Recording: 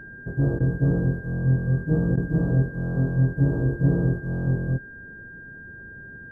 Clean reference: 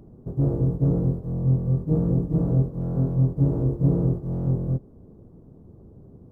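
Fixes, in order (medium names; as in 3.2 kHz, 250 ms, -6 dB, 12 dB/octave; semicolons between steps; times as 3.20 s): band-stop 1.6 kHz, Q 30; interpolate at 0.59/2.16 s, 12 ms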